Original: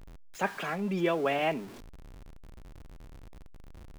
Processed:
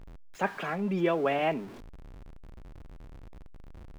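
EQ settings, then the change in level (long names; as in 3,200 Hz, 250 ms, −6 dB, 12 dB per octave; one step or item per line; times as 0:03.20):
high-shelf EQ 3,800 Hz −9.5 dB
+1.5 dB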